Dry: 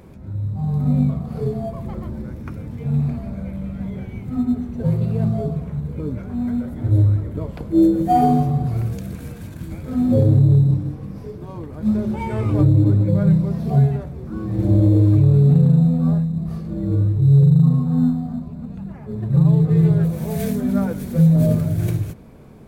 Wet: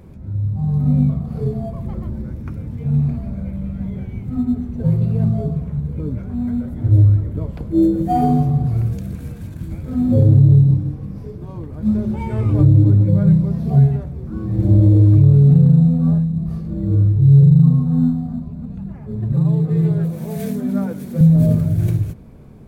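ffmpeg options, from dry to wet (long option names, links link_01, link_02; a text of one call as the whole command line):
ffmpeg -i in.wav -filter_complex "[0:a]asettb=1/sr,asplit=3[link_01][link_02][link_03];[link_01]atrim=end=19.324[link_04];[link_02]atrim=start=19.32:end=21.21,asetpts=PTS-STARTPTS,afade=type=in:duration=0.004:curve=qsin,afade=type=out:start_time=1.886:duration=0.004:curve=qsin,highpass=180[link_05];[link_03]atrim=start=21.206[link_06];[link_04][link_05]acrossfade=duration=0.004:curve1=hsin:curve2=qsin[link_07];[link_07][link_06]acrossfade=duration=0.004:curve1=qsin:curve2=hsin,lowshelf=frequency=230:gain=9,volume=-3.5dB" out.wav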